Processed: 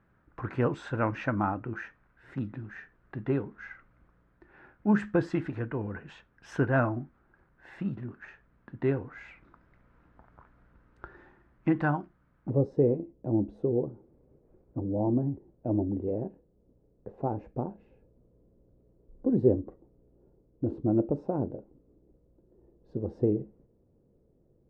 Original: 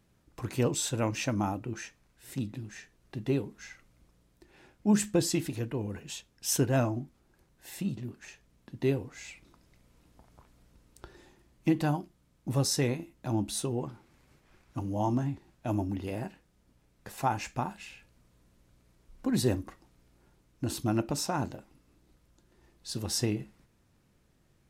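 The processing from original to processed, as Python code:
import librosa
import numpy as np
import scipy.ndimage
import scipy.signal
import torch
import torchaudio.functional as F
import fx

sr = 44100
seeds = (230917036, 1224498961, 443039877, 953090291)

y = fx.lowpass_res(x, sr, hz=fx.steps((0.0, 1500.0), (12.5, 470.0)), q=2.9)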